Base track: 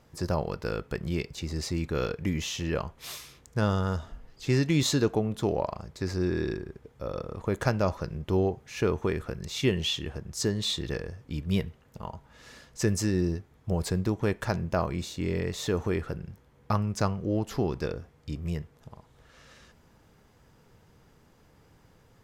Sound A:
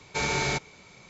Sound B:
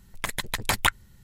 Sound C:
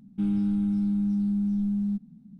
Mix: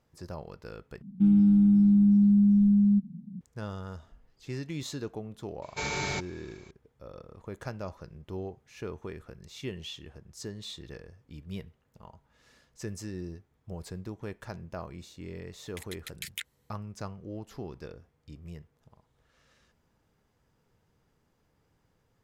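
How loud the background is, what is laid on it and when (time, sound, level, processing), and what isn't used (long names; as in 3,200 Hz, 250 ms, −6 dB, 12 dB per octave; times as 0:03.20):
base track −12 dB
0:01.02: overwrite with C −5 dB + parametric band 170 Hz +14 dB 1 octave
0:05.62: mix in A −5 dB
0:15.53: mix in B −12.5 dB + Butterworth high-pass 1,900 Hz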